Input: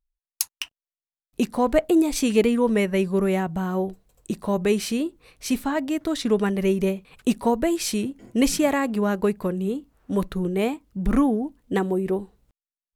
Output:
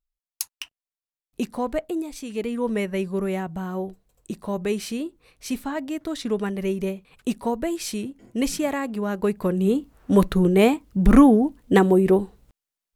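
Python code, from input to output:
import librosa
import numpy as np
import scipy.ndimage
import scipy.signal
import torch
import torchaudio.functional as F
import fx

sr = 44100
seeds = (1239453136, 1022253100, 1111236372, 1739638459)

y = fx.gain(x, sr, db=fx.line((1.53, -4.0), (2.25, -13.0), (2.66, -4.0), (9.06, -4.0), (9.77, 7.0)))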